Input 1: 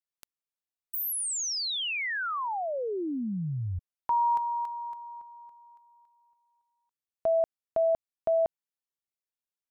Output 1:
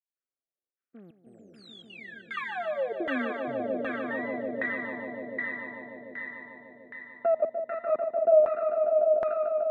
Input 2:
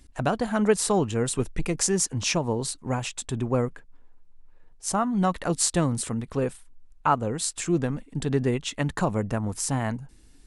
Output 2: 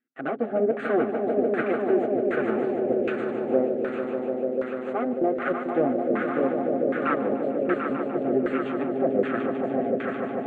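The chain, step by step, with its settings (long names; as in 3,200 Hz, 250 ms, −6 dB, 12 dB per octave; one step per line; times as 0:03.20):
lower of the sound and its delayed copy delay 7.8 ms
high-pass filter 260 Hz 24 dB per octave
high-shelf EQ 4,100 Hz +11.5 dB
in parallel at −3 dB: brickwall limiter −20 dBFS
on the sum: tape wow and flutter 2.1 Hz 110 cents
gate pattern "..xxxxxxx.xxxx" 190 BPM −24 dB
high-frequency loss of the air 94 metres
phaser with its sweep stopped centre 2,300 Hz, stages 4
on a send: echo that builds up and dies away 148 ms, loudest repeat 5, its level −7 dB
on the sum: auto-filter low-pass saw down 1.3 Hz 530–1,500 Hz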